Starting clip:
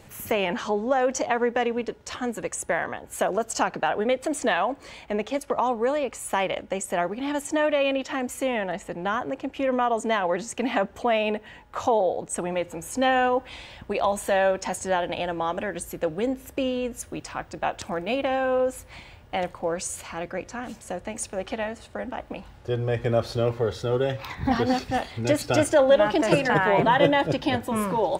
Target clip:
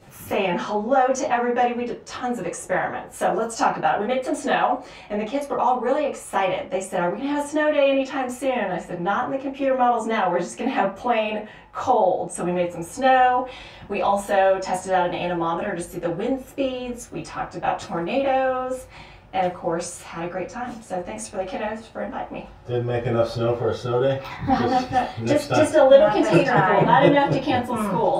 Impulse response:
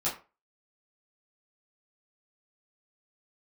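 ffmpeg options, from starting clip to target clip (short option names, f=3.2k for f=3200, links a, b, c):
-filter_complex "[0:a]highshelf=f=10k:g=-6.5[a];[1:a]atrim=start_sample=2205[b];[a][b]afir=irnorm=-1:irlink=0,volume=-4dB"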